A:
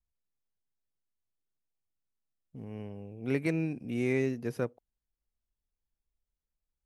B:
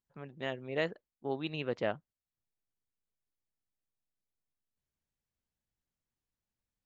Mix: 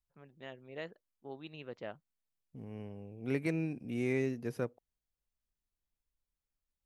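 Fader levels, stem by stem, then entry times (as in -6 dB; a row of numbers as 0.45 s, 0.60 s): -3.5 dB, -10.5 dB; 0.00 s, 0.00 s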